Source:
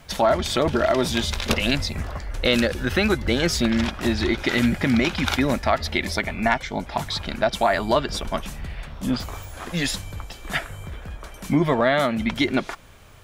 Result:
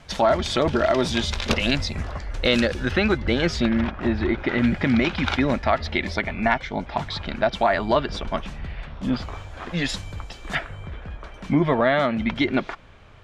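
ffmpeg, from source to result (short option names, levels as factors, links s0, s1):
-af "asetnsamples=n=441:p=0,asendcmd='2.91 lowpass f 3900;3.69 lowpass f 2000;4.64 lowpass f 3800;9.89 lowpass f 6400;10.55 lowpass f 3500',lowpass=6700"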